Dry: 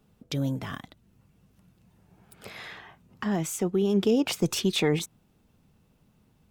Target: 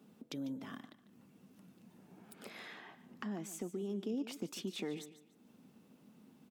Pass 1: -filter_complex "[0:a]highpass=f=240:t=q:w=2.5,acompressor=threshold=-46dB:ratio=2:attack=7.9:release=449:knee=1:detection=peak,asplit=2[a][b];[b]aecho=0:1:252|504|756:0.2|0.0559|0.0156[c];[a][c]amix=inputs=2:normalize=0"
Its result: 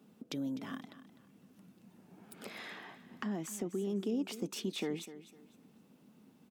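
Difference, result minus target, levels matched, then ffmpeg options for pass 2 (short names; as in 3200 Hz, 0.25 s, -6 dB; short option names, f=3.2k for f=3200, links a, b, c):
echo 0.105 s late; compressor: peak gain reduction -3.5 dB
-filter_complex "[0:a]highpass=f=240:t=q:w=2.5,acompressor=threshold=-53.5dB:ratio=2:attack=7.9:release=449:knee=1:detection=peak,asplit=2[a][b];[b]aecho=0:1:147|294|441:0.2|0.0559|0.0156[c];[a][c]amix=inputs=2:normalize=0"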